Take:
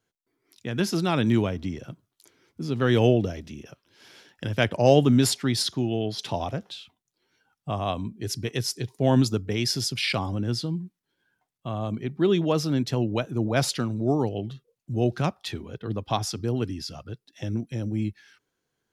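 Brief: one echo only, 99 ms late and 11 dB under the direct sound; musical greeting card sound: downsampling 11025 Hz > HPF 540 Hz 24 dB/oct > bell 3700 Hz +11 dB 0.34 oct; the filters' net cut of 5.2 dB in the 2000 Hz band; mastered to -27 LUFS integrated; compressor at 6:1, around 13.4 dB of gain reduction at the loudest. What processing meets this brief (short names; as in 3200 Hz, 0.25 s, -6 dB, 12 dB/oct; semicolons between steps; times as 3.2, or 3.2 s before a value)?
bell 2000 Hz -8 dB; compressor 6:1, threshold -28 dBFS; echo 99 ms -11 dB; downsampling 11025 Hz; HPF 540 Hz 24 dB/oct; bell 3700 Hz +11 dB 0.34 oct; gain +9.5 dB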